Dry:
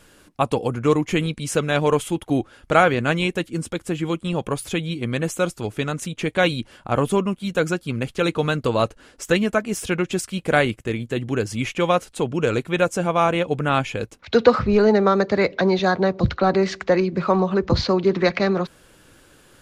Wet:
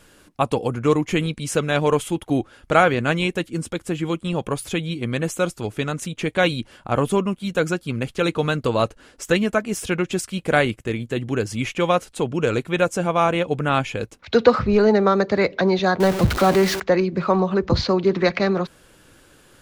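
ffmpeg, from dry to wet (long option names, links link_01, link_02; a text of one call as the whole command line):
ffmpeg -i in.wav -filter_complex "[0:a]asettb=1/sr,asplit=3[link_01][link_02][link_03];[link_01]atrim=end=16.004[link_04];[link_02]atrim=start=16:end=16.8,asetpts=PTS-STARTPTS,afade=type=in:duration=0.004:curve=qsin,afade=type=out:start_time=0.796:duration=0.004:curve=qsin,aeval=exprs='val(0)+0.5*0.0891*sgn(val(0))':channel_layout=same[link_05];[link_03]atrim=start=16.796[link_06];[link_04][link_05]acrossfade=duration=0.004:curve1=hsin:curve2=qsin[link_07];[link_07][link_06]acrossfade=duration=0.004:curve1=qsin:curve2=hsin" out.wav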